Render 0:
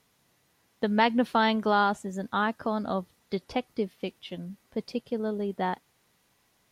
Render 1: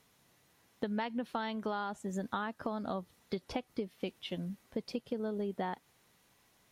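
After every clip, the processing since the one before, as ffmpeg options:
-af "bandreject=f=4.8k:w=29,acompressor=threshold=-32dB:ratio=16"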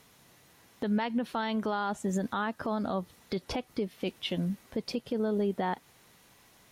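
-af "alimiter=level_in=6dB:limit=-24dB:level=0:latency=1:release=42,volume=-6dB,volume=8.5dB"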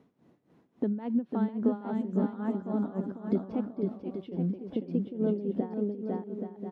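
-filter_complex "[0:a]asplit=2[a][b];[b]aecho=0:1:500|825|1036|1174|1263:0.631|0.398|0.251|0.158|0.1[c];[a][c]amix=inputs=2:normalize=0,tremolo=f=3.6:d=0.81,bandpass=f=270:t=q:w=1.5:csg=0,volume=7dB"

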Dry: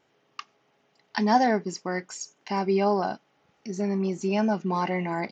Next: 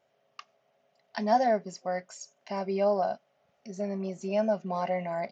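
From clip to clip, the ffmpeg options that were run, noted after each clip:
-af "superequalizer=6b=0.398:8b=3.55,volume=-7.5dB"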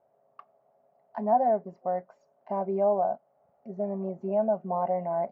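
-filter_complex "[0:a]asplit=2[a][b];[b]alimiter=level_in=0.5dB:limit=-24dB:level=0:latency=1:release=399,volume=-0.5dB,volume=2dB[c];[a][c]amix=inputs=2:normalize=0,lowpass=f=850:t=q:w=1.7,volume=-6.5dB"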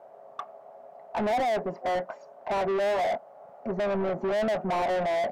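-filter_complex "[0:a]asplit=2[a][b];[b]highpass=f=720:p=1,volume=36dB,asoftclip=type=tanh:threshold=-12dB[c];[a][c]amix=inputs=2:normalize=0,lowpass=f=1.8k:p=1,volume=-6dB,volume=-7.5dB"

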